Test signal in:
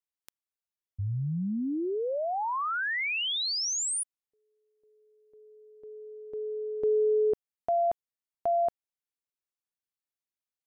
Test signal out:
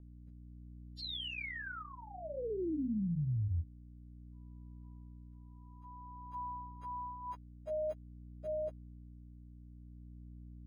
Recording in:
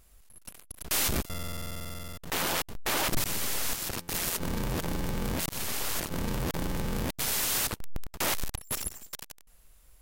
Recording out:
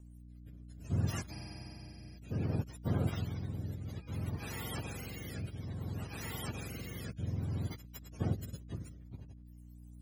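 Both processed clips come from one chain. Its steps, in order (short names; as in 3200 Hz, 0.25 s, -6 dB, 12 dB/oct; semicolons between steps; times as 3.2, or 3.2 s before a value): spectrum mirrored in octaves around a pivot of 650 Hz; hum 60 Hz, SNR 12 dB; rotary speaker horn 0.6 Hz; gain -6 dB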